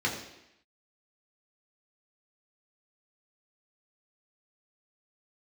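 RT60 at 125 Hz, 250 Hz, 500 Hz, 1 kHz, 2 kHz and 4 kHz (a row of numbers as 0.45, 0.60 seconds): 0.70, 0.85, 0.80, 0.85, 0.90, 0.85 seconds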